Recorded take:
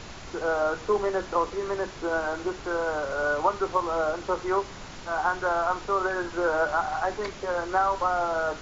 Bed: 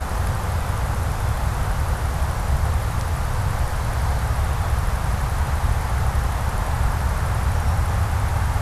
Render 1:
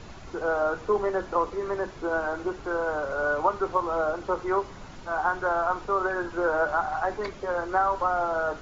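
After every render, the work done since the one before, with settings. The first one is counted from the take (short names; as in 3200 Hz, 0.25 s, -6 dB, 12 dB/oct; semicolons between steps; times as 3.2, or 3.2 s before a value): denoiser 8 dB, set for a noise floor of -42 dBFS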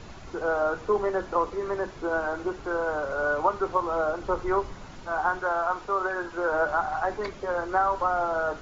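4.22–4.74 low shelf 81 Hz +11 dB; 5.39–6.52 low shelf 330 Hz -6.5 dB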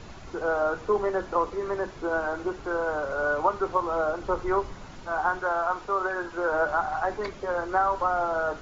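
nothing audible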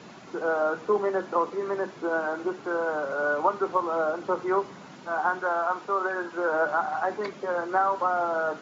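HPF 170 Hz 24 dB/oct; tone controls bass +4 dB, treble -2 dB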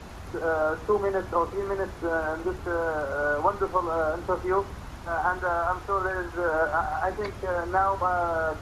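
add bed -19.5 dB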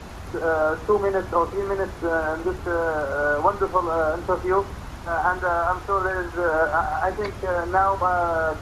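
gain +4 dB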